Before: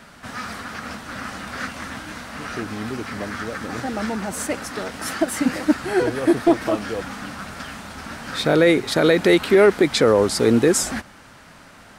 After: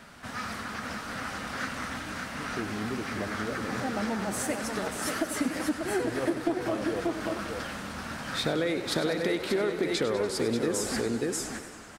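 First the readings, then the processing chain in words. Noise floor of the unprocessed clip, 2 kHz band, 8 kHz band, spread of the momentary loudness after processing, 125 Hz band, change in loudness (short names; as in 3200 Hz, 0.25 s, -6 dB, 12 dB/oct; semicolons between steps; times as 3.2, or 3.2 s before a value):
-46 dBFS, -7.5 dB, -6.5 dB, 8 LU, -8.5 dB, -10.5 dB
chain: echo 0.587 s -6.5 dB; compressor 6:1, threshold -21 dBFS, peak gain reduction 12 dB; warbling echo 96 ms, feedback 71%, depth 141 cents, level -11.5 dB; gain -4.5 dB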